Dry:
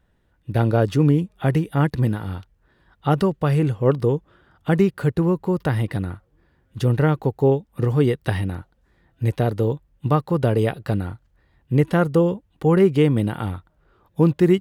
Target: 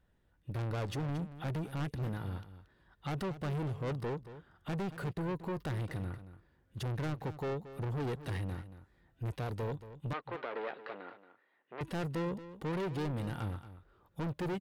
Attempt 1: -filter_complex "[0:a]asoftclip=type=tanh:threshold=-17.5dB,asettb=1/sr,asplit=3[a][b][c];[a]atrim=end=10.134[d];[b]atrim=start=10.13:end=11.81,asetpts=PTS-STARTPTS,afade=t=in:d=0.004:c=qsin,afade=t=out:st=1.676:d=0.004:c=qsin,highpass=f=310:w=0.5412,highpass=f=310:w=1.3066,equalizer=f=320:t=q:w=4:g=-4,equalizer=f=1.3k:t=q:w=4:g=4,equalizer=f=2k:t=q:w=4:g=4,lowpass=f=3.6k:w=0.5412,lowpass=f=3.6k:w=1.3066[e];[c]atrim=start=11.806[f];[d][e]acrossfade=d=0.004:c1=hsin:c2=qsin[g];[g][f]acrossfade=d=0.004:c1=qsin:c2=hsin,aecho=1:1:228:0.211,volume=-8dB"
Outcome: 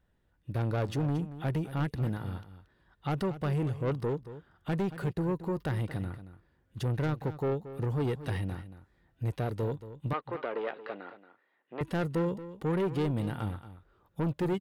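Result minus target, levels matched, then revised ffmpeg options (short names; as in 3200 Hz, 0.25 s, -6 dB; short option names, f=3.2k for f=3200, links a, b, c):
soft clip: distortion -5 dB
-filter_complex "[0:a]asoftclip=type=tanh:threshold=-25.5dB,asettb=1/sr,asplit=3[a][b][c];[a]atrim=end=10.134[d];[b]atrim=start=10.13:end=11.81,asetpts=PTS-STARTPTS,afade=t=in:d=0.004:c=qsin,afade=t=out:st=1.676:d=0.004:c=qsin,highpass=f=310:w=0.5412,highpass=f=310:w=1.3066,equalizer=f=320:t=q:w=4:g=-4,equalizer=f=1.3k:t=q:w=4:g=4,equalizer=f=2k:t=q:w=4:g=4,lowpass=f=3.6k:w=0.5412,lowpass=f=3.6k:w=1.3066[e];[c]atrim=start=11.806[f];[d][e]acrossfade=d=0.004:c1=hsin:c2=qsin[g];[g][f]acrossfade=d=0.004:c1=qsin:c2=hsin,aecho=1:1:228:0.211,volume=-8dB"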